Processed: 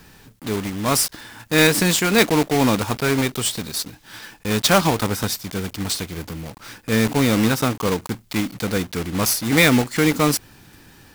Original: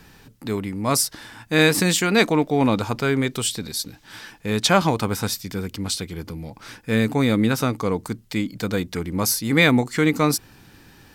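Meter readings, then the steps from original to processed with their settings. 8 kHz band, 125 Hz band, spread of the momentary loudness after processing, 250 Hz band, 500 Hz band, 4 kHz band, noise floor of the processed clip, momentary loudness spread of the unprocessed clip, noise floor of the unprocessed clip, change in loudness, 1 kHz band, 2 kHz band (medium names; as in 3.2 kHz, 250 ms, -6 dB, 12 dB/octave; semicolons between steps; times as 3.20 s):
+2.5 dB, +1.0 dB, 16 LU, +1.0 dB, +1.0 dB, +2.5 dB, -50 dBFS, 16 LU, -51 dBFS, +1.5 dB, +1.5 dB, +1.5 dB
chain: block-companded coder 3-bit; trim +1 dB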